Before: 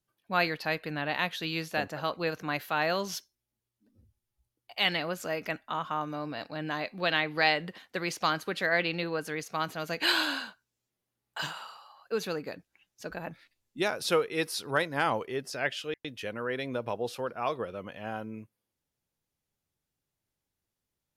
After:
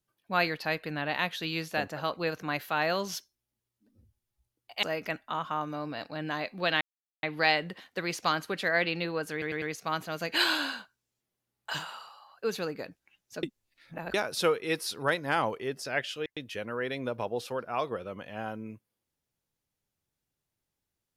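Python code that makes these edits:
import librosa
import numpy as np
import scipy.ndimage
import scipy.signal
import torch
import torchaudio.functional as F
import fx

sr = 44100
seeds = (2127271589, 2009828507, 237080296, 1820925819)

y = fx.edit(x, sr, fx.cut(start_s=4.83, length_s=0.4),
    fx.insert_silence(at_s=7.21, length_s=0.42),
    fx.stutter(start_s=9.3, slice_s=0.1, count=4),
    fx.reverse_span(start_s=13.11, length_s=0.71), tone=tone)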